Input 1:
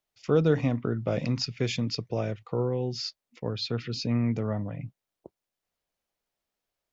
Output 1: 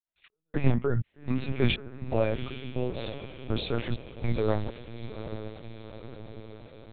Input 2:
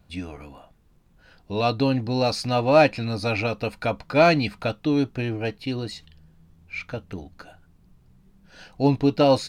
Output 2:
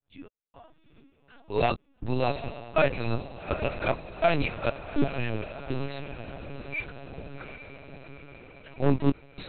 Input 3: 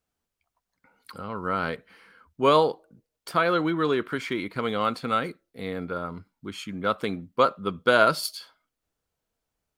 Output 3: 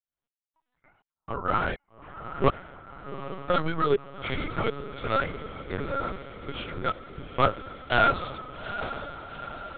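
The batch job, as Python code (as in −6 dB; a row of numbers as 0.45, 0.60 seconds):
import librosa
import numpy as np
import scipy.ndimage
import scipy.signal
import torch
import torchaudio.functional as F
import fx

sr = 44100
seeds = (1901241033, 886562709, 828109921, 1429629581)

p1 = fx.fade_in_head(x, sr, length_s=0.69)
p2 = fx.peak_eq(p1, sr, hz=210.0, db=-5.5, octaves=1.1)
p3 = fx.hum_notches(p2, sr, base_hz=50, count=7)
p4 = p3 + 0.55 * np.pad(p3, (int(7.2 * sr / 1000.0), 0))[:len(p3)]
p5 = 10.0 ** (-18.5 / 20.0) * (np.abs((p4 / 10.0 ** (-18.5 / 20.0) + 3.0) % 4.0 - 2.0) - 1.0)
p6 = p4 + F.gain(torch.from_numpy(p5), -4.0).numpy()
p7 = fx.chorus_voices(p6, sr, voices=2, hz=0.75, base_ms=14, depth_ms=4.7, mix_pct=35)
p8 = fx.step_gate(p7, sr, bpm=163, pattern='xxx...xx', floor_db=-60.0, edge_ms=4.5)
p9 = p8 + fx.echo_diffused(p8, sr, ms=820, feedback_pct=61, wet_db=-10.5, dry=0)
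p10 = fx.lpc_vocoder(p9, sr, seeds[0], excitation='pitch_kept', order=10)
y = p10 * 10.0 ** (-30 / 20.0) / np.sqrt(np.mean(np.square(p10)))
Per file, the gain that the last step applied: +2.5, −3.0, −0.5 decibels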